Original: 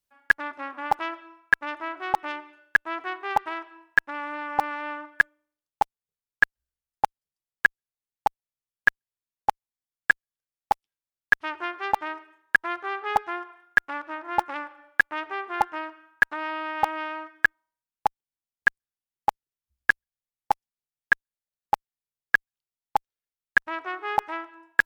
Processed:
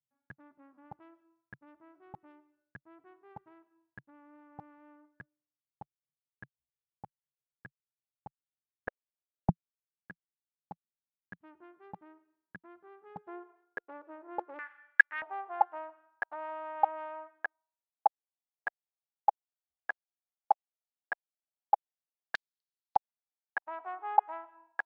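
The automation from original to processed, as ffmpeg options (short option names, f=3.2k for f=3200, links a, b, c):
-af "asetnsamples=n=441:p=0,asendcmd='8.88 bandpass f 570;9.49 bandpass f 170;13.27 bandpass f 450;14.59 bandpass f 1800;15.22 bandpass f 730;22.35 bandpass f 4200;22.96 bandpass f 790',bandpass=f=140:t=q:w=3.7:csg=0"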